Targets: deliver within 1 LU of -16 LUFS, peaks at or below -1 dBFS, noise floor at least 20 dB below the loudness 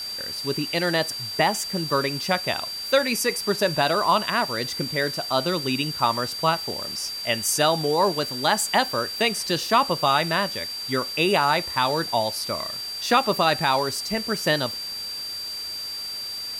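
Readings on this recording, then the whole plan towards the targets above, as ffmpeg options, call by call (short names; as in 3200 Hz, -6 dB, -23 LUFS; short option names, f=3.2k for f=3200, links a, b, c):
steady tone 4700 Hz; tone level -30 dBFS; noise floor -33 dBFS; noise floor target -44 dBFS; loudness -23.5 LUFS; peak -7.0 dBFS; loudness target -16.0 LUFS
-> -af "bandreject=f=4.7k:w=30"
-af "afftdn=nr=11:nf=-33"
-af "volume=7.5dB,alimiter=limit=-1dB:level=0:latency=1"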